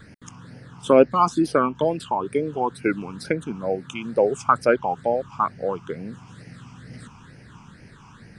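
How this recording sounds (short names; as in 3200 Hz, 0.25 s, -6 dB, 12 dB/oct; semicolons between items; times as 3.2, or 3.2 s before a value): phasing stages 8, 2.2 Hz, lowest notch 520–1100 Hz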